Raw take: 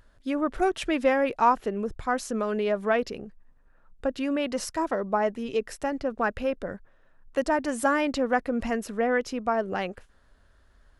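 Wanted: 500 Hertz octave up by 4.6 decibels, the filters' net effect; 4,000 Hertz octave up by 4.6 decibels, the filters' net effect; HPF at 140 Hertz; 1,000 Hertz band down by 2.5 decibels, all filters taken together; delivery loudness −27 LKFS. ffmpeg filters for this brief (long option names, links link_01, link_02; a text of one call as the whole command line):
ffmpeg -i in.wav -af "highpass=140,equalizer=frequency=500:width_type=o:gain=7,equalizer=frequency=1000:width_type=o:gain=-6.5,equalizer=frequency=4000:width_type=o:gain=7,volume=-2dB" out.wav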